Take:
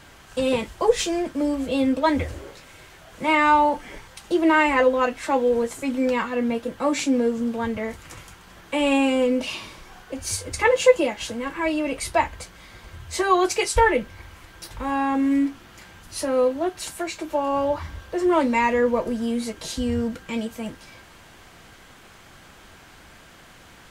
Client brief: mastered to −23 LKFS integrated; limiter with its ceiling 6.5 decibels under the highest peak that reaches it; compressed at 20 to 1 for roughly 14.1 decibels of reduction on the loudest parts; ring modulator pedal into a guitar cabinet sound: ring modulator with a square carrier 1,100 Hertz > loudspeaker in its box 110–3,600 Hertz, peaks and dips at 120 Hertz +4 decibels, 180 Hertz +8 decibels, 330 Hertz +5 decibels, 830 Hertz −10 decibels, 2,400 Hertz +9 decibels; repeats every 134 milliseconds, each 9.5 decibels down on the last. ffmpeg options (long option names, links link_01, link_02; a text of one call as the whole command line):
ffmpeg -i in.wav -af "acompressor=threshold=-23dB:ratio=20,alimiter=limit=-21dB:level=0:latency=1,aecho=1:1:134|268|402|536:0.335|0.111|0.0365|0.012,aeval=exprs='val(0)*sgn(sin(2*PI*1100*n/s))':channel_layout=same,highpass=110,equalizer=frequency=120:width_type=q:width=4:gain=4,equalizer=frequency=180:width_type=q:width=4:gain=8,equalizer=frequency=330:width_type=q:width=4:gain=5,equalizer=frequency=830:width_type=q:width=4:gain=-10,equalizer=frequency=2400:width_type=q:width=4:gain=9,lowpass=frequency=3600:width=0.5412,lowpass=frequency=3600:width=1.3066,volume=6dB" out.wav